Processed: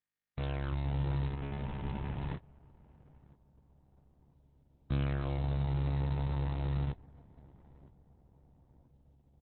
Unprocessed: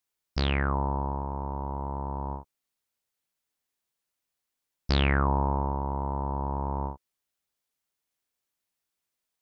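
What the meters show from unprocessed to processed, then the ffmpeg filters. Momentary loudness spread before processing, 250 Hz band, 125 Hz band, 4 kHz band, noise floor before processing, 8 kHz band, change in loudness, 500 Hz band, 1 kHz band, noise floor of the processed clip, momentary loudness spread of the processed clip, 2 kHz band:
12 LU, -6.0 dB, -2.0 dB, -14.0 dB, -85 dBFS, n/a, -6.0 dB, -9.5 dB, -15.5 dB, -70 dBFS, 7 LU, -13.0 dB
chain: -filter_complex "[0:a]acrossover=split=3300[a][b];[b]acompressor=threshold=-51dB:ratio=4:attack=1:release=60[c];[a][c]amix=inputs=2:normalize=0,highpass=f=45:p=1,agate=range=-40dB:threshold=-31dB:ratio=16:detection=peak,equalizer=f=125:t=o:w=1:g=12,equalizer=f=250:t=o:w=1:g=-10,equalizer=f=500:t=o:w=1:g=3,equalizer=f=1k:t=o:w=1:g=-7,equalizer=f=2k:t=o:w=1:g=-10,equalizer=f=4k:t=o:w=1:g=7,areverse,acompressor=threshold=-39dB:ratio=4,areverse,aeval=exprs='0.0282*(cos(1*acos(clip(val(0)/0.0282,-1,1)))-cos(1*PI/2))+0.00316*(cos(2*acos(clip(val(0)/0.0282,-1,1)))-cos(2*PI/2))+0.002*(cos(5*acos(clip(val(0)/0.0282,-1,1)))-cos(5*PI/2))+0.000794*(cos(6*acos(clip(val(0)/0.0282,-1,1)))-cos(6*PI/2))+0.000631*(cos(8*acos(clip(val(0)/0.0282,-1,1)))-cos(8*PI/2))':c=same,acrusher=bits=3:mode=log:mix=0:aa=0.000001,asplit=2[d][e];[e]adelay=977,lowpass=f=820:p=1,volume=-20.5dB,asplit=2[f][g];[g]adelay=977,lowpass=f=820:p=1,volume=0.54,asplit=2[h][i];[i]adelay=977,lowpass=f=820:p=1,volume=0.54,asplit=2[j][k];[k]adelay=977,lowpass=f=820:p=1,volume=0.54[l];[f][h][j][l]amix=inputs=4:normalize=0[m];[d][m]amix=inputs=2:normalize=0,volume=9dB" -ar 48000 -c:a libopus -b:a 6k

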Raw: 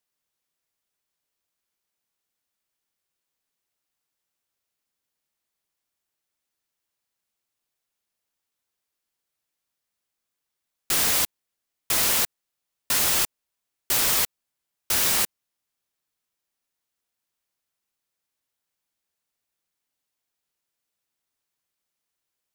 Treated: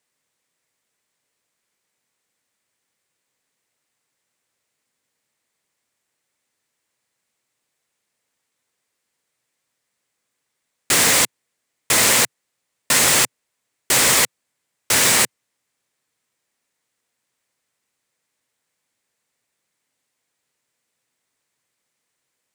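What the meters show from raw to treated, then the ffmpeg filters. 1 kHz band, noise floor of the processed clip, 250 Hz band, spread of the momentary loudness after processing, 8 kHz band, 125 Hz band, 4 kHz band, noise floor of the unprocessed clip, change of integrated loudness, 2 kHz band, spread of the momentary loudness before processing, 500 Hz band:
+9.0 dB, -77 dBFS, +10.0 dB, 8 LU, +8.5 dB, +9.0 dB, +7.5 dB, -84 dBFS, +6.0 dB, +10.5 dB, 8 LU, +10.5 dB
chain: -af "equalizer=f=125:t=o:w=1:g=11,equalizer=f=250:t=o:w=1:g=8,equalizer=f=500:t=o:w=1:g=10,equalizer=f=1k:t=o:w=1:g=6,equalizer=f=2k:t=o:w=1:g=11,equalizer=f=4k:t=o:w=1:g=4,equalizer=f=8k:t=o:w=1:g=11,volume=-1.5dB"

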